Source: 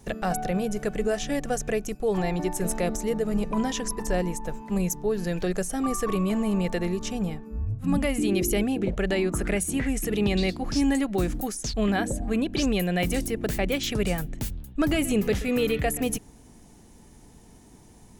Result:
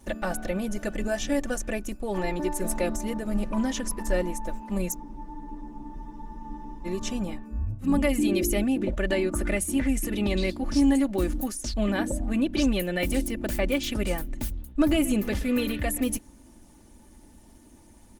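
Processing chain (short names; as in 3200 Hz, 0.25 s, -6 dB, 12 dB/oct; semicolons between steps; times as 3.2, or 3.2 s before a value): comb 3.4 ms, depth 75%; spectral freeze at 5, 1.87 s; gain -2 dB; Opus 24 kbps 48000 Hz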